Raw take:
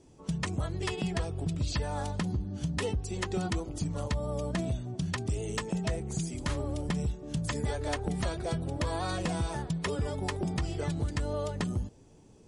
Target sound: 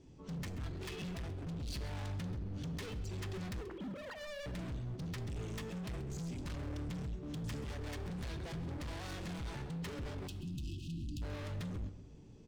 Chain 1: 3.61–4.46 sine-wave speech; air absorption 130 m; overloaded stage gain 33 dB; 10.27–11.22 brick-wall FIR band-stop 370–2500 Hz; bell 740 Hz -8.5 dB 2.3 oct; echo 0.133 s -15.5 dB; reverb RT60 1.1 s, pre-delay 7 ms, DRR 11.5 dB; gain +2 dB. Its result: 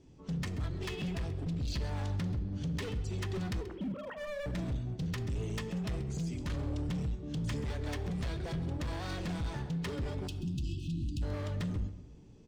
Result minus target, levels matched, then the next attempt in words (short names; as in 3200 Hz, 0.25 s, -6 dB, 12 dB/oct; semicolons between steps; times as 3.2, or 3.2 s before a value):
overloaded stage: distortion -4 dB
3.61–4.46 sine-wave speech; air absorption 130 m; overloaded stage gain 40.5 dB; 10.27–11.22 brick-wall FIR band-stop 370–2500 Hz; bell 740 Hz -8.5 dB 2.3 oct; echo 0.133 s -15.5 dB; reverb RT60 1.1 s, pre-delay 7 ms, DRR 11.5 dB; gain +2 dB